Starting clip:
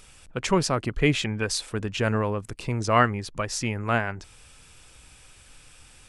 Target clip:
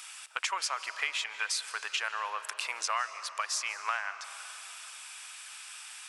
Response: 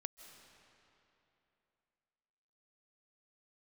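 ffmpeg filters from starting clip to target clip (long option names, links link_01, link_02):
-filter_complex "[0:a]highpass=frequency=940:width=0.5412,highpass=frequency=940:width=1.3066,acompressor=threshold=-38dB:ratio=6,asplit=2[link_01][link_02];[1:a]atrim=start_sample=2205[link_03];[link_02][link_03]afir=irnorm=-1:irlink=0,volume=10.5dB[link_04];[link_01][link_04]amix=inputs=2:normalize=0,volume=-2dB"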